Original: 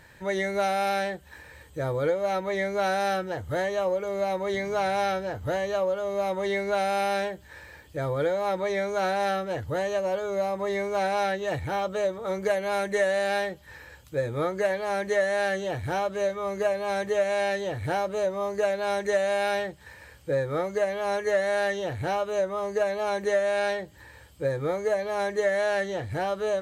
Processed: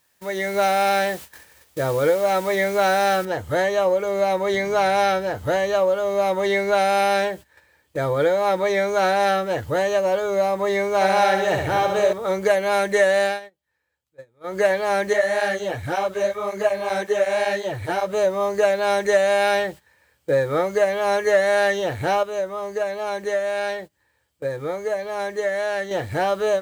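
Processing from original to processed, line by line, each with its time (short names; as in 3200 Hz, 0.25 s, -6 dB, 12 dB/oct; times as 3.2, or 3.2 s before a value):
3.25 noise floor step -48 dB -63 dB
10.94–12.13 flutter echo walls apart 11.6 m, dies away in 0.8 s
13.24–14.59 dip -18 dB, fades 0.16 s
15.13–18.13 tape flanging out of phase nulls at 1.8 Hz, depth 7.8 ms
22.23–25.91 gain -6 dB
whole clip: gate -42 dBFS, range -19 dB; low shelf 150 Hz -8 dB; AGC gain up to 7.5 dB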